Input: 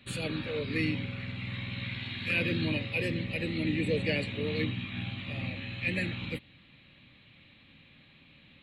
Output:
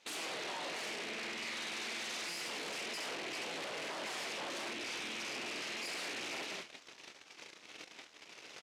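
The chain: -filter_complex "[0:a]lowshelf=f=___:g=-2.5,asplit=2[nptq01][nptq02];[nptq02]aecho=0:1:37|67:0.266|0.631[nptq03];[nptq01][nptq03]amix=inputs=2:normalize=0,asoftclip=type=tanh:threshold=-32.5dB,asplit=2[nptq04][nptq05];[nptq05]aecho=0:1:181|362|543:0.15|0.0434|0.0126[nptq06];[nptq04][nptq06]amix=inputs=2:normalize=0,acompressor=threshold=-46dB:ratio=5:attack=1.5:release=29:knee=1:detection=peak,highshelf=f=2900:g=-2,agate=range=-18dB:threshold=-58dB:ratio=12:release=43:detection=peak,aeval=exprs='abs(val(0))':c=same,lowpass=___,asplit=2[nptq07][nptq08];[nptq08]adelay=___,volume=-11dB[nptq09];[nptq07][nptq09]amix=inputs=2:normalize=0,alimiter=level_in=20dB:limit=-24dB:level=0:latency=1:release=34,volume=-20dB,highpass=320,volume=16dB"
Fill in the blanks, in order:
460, 9700, 23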